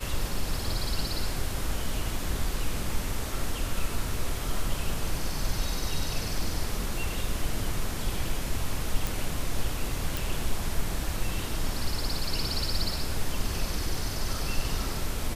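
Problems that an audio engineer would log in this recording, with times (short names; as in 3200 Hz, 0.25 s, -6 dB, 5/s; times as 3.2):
9.07 pop
10.17 pop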